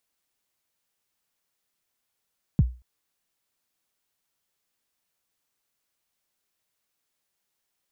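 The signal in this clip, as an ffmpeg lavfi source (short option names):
-f lavfi -i "aevalsrc='0.266*pow(10,-3*t/0.31)*sin(2*PI*(200*0.034/log(61/200)*(exp(log(61/200)*min(t,0.034)/0.034)-1)+61*max(t-0.034,0)))':d=0.23:s=44100"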